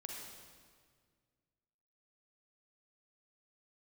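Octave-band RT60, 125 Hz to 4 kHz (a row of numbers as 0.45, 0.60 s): 2.4, 2.2, 1.9, 1.7, 1.6, 1.5 s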